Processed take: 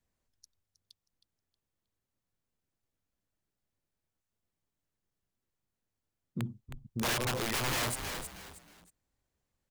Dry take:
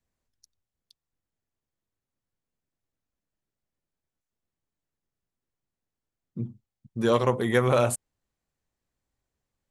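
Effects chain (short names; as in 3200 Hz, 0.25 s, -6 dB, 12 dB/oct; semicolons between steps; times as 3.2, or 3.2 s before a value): wrapped overs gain 21 dB; frequency-shifting echo 0.316 s, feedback 30%, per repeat -99 Hz, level -13 dB; limiter -26 dBFS, peak gain reduction 8 dB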